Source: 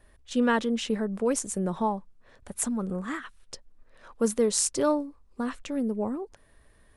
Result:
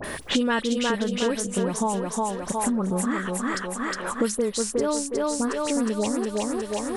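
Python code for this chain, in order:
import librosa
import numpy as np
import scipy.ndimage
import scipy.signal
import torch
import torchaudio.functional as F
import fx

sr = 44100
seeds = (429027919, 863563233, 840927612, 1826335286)

p1 = fx.dispersion(x, sr, late='highs', ms=41.0, hz=1900.0)
p2 = p1 + fx.echo_thinned(p1, sr, ms=362, feedback_pct=49, hz=240.0, wet_db=-3.5, dry=0)
p3 = fx.band_squash(p2, sr, depth_pct=100)
y = p3 * 10.0 ** (1.5 / 20.0)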